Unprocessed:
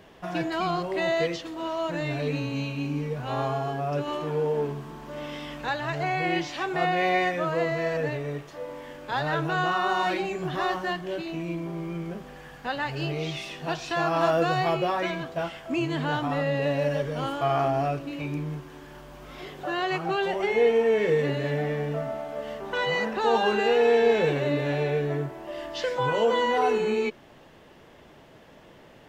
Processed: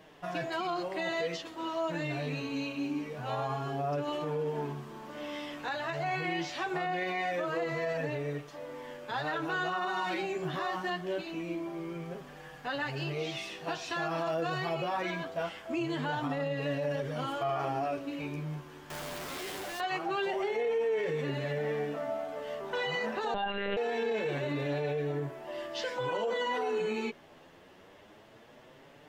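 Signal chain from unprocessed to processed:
0:18.90–0:19.80: sign of each sample alone
flanger 0.24 Hz, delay 6.3 ms, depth 6.6 ms, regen −6%
brickwall limiter −24 dBFS, peak gain reduction 11 dB
0:23.34–0:23.77: one-pitch LPC vocoder at 8 kHz 200 Hz
low-shelf EQ 150 Hz −6.5 dB

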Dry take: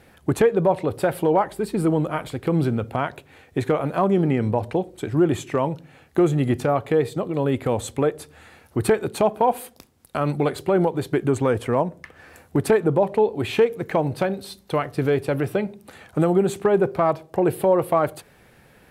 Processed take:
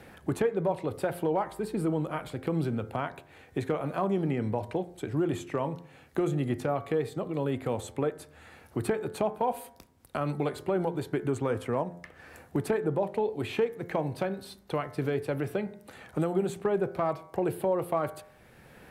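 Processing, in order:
hum removal 87.06 Hz, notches 26
multiband upward and downward compressor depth 40%
level −8.5 dB

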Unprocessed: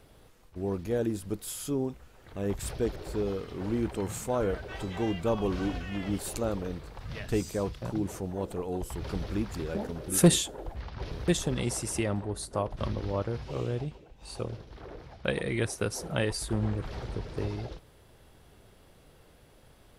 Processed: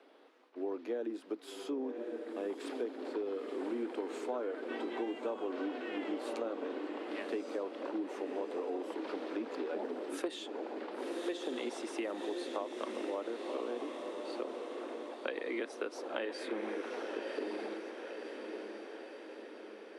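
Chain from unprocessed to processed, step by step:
Butterworth high-pass 250 Hz 72 dB per octave
parametric band 7,100 Hz −9 dB 1.1 octaves
feedback delay with all-pass diffusion 1,098 ms, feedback 57%, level −8 dB
downward compressor 8 to 1, threshold −33 dBFS, peak gain reduction 15.5 dB
high-frequency loss of the air 100 metres

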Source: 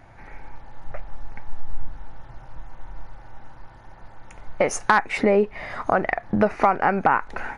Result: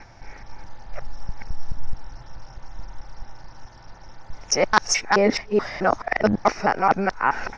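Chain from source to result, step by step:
reversed piece by piece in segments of 215 ms
low-pass with resonance 5,500 Hz, resonance Q 13

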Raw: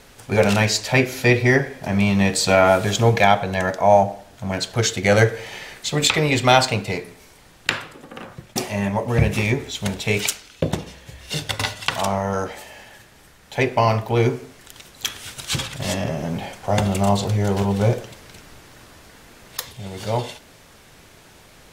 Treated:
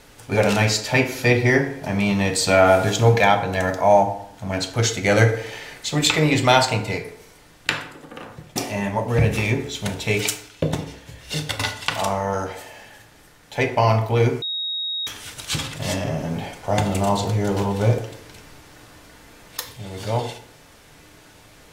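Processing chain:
0:03.52–0:03.93: high-shelf EQ 10,000 Hz +5.5 dB
feedback delay network reverb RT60 0.69 s, low-frequency decay 0.95×, high-frequency decay 0.6×, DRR 6 dB
0:14.42–0:15.07: beep over 3,770 Hz −22 dBFS
level −1.5 dB

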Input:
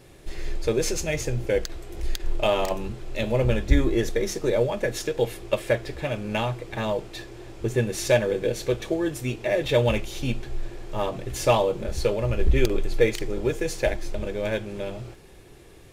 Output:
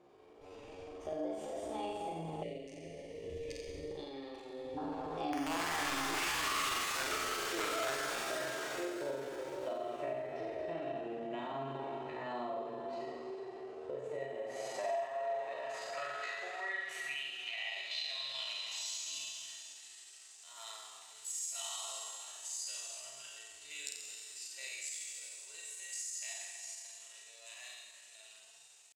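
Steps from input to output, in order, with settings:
source passing by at 0:03.41, 33 m/s, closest 15 metres
band-pass filter sweep 280 Hz → 6,200 Hz, 0:07.25–0:10.65
tempo change 0.55×
wrap-around overflow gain 28 dB
graphic EQ with 15 bands 160 Hz −10 dB, 400 Hz −9 dB, 6,300 Hz +4 dB
dense smooth reverb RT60 2.9 s, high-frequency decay 0.95×, DRR 2.5 dB
mid-hump overdrive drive 15 dB, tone 6,400 Hz, clips at −22.5 dBFS
downward compressor 5 to 1, threshold −56 dBFS, peak gain reduction 24.5 dB
flutter between parallel walls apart 7.7 metres, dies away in 0.89 s
gain on a spectral selection 0:02.44–0:04.79, 500–1,400 Hz −19 dB
pitch shifter +3.5 semitones
level +15.5 dB

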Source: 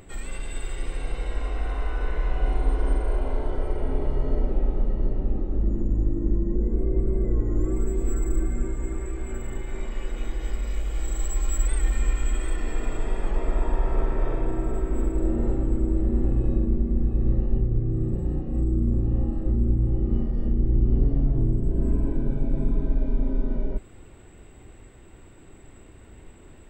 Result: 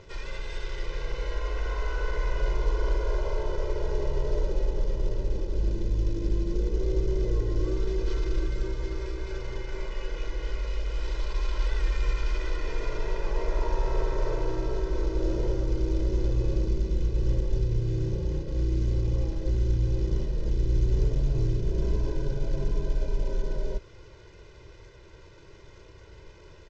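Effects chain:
variable-slope delta modulation 32 kbit/s
low-shelf EQ 78 Hz −7 dB
comb filter 2 ms, depth 92%
in parallel at −10 dB: gain into a clipping stage and back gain 21 dB
on the sum: level −4.5 dB

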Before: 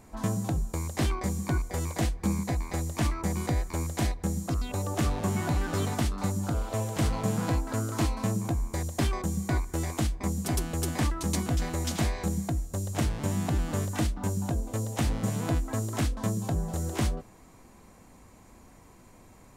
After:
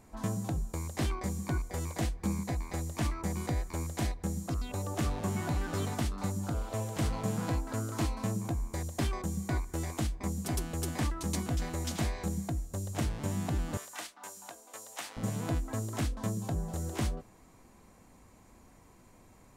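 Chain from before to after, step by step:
0:13.77–0:15.17: high-pass filter 890 Hz 12 dB per octave
level −4.5 dB

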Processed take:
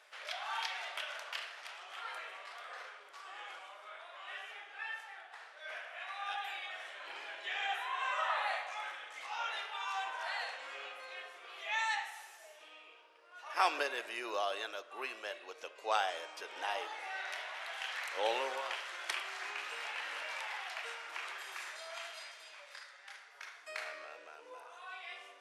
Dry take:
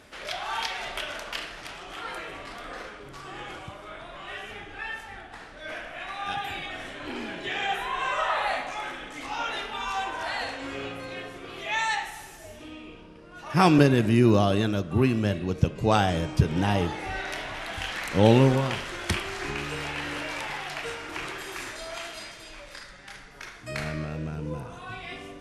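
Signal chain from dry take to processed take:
Bessel high-pass filter 840 Hz, order 6
high-shelf EQ 4,700 Hz −6 dB
level −5.5 dB

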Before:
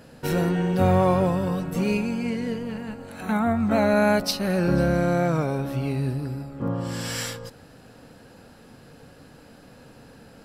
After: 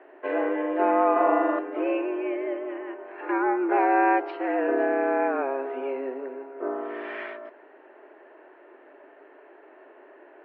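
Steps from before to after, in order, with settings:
0:01.12–0:01.59: flutter between parallel walls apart 7 metres, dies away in 1 s
single-sideband voice off tune +130 Hz 200–2,300 Hz
MP3 40 kbit/s 16,000 Hz

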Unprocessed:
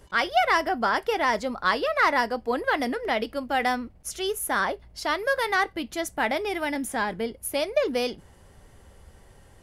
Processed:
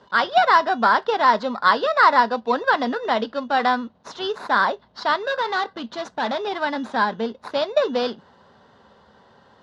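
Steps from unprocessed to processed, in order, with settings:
in parallel at −7.5 dB: decimation without filtering 14×
0:05.20–0:06.47: on the sum: hard clipping −23 dBFS, distortion −16 dB
loudspeaker in its box 220–4,800 Hz, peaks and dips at 220 Hz +5 dB, 330 Hz −8 dB, 1,000 Hz +7 dB, 1,500 Hz +5 dB, 2,300 Hz −9 dB, 3,800 Hz +6 dB
level +1.5 dB

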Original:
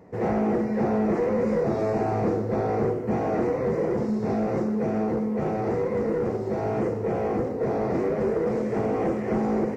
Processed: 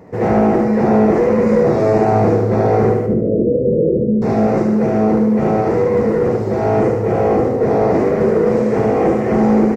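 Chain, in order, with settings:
0:03.06–0:04.22: Butterworth low-pass 590 Hz 96 dB per octave
repeating echo 74 ms, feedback 44%, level −6 dB
level +9 dB

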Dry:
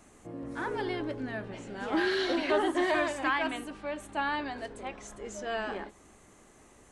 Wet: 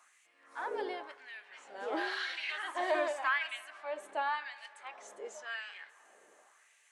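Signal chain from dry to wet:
auto-filter high-pass sine 0.92 Hz 470–2,400 Hz
delay with a band-pass on its return 113 ms, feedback 82%, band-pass 1,200 Hz, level −23 dB
level −6.5 dB

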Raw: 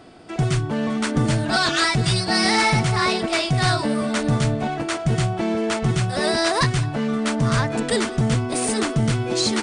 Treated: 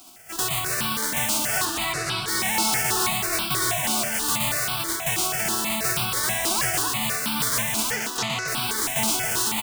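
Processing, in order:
spectral envelope flattened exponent 0.1
0:07.91–0:08.48: elliptic band-pass filter 130–6,300 Hz
soft clipping −16.5 dBFS, distortion −14 dB
0:01.65–0:02.28: high-frequency loss of the air 62 metres
single-tap delay 271 ms −4 dB
step-sequenced phaser 6.2 Hz 490–1,900 Hz

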